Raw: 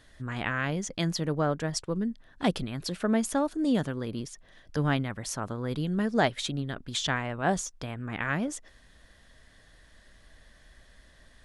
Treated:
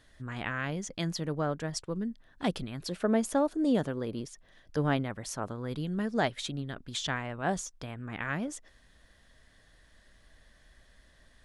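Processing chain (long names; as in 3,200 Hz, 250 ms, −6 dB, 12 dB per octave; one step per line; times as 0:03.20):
0:02.81–0:05.51: dynamic equaliser 510 Hz, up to +6 dB, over −40 dBFS, Q 0.76
level −4 dB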